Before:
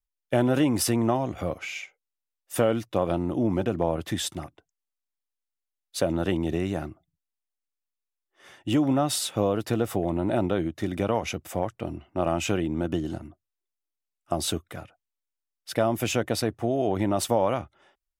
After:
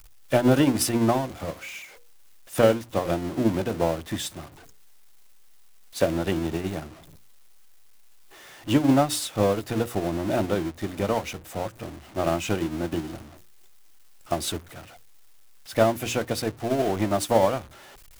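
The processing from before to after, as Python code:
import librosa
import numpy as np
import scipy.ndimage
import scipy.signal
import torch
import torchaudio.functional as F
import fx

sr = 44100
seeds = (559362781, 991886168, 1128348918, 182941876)

y = x + 0.5 * 10.0 ** (-26.5 / 20.0) * np.sign(x)
y = fx.hum_notches(y, sr, base_hz=60, count=9)
y = fx.upward_expand(y, sr, threshold_db=-32.0, expansion=2.5)
y = y * 10.0 ** (5.5 / 20.0)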